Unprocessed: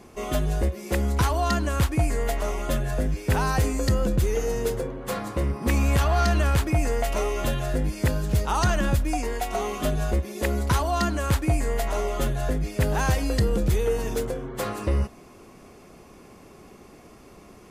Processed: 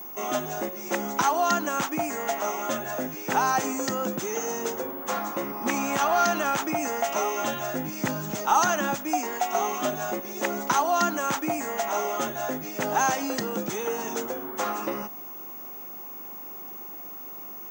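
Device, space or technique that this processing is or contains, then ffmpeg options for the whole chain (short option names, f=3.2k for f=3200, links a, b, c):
old television with a line whistle: -filter_complex "[0:a]highpass=f=220:w=0.5412,highpass=f=220:w=1.3066,equalizer=f=460:t=q:w=4:g=-6,equalizer=f=830:t=q:w=4:g=8,equalizer=f=1.3k:t=q:w=4:g=5,equalizer=f=4.4k:t=q:w=4:g=-5,equalizer=f=6.3k:t=q:w=4:g=9,lowpass=f=7.9k:w=0.5412,lowpass=f=7.9k:w=1.3066,aeval=exprs='val(0)+0.0141*sin(2*PI*15625*n/s)':c=same,asettb=1/sr,asplit=3[a][b][c];[a]atrim=end=7.384[d];[b]atrim=start=7.38:end=8.32,asetpts=PTS-STARTPTS,afade=t=in:d=0.004:c=qsin,afade=t=out:st=0.936:d=0.004:c=qsin,asubboost=boost=9.5:cutoff=230[e];[c]atrim=start=8.316[f];[d][e]acrossfade=d=0.004:c1=hsin:c2=qsin[g];[g][f]acrossfade=d=0.004:c1=qsin:c2=hsin"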